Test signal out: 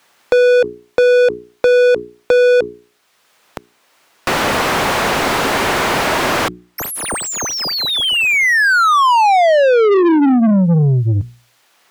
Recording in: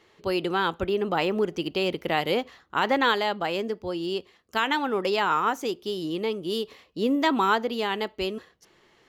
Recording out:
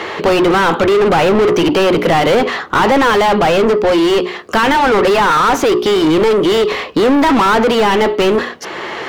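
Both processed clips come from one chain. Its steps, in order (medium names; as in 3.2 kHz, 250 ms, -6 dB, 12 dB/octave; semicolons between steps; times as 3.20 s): hum notches 60/120/180/240/300/360/420 Hz; overdrive pedal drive 36 dB, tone 1.4 kHz, clips at -10.5 dBFS; three bands compressed up and down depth 40%; trim +7 dB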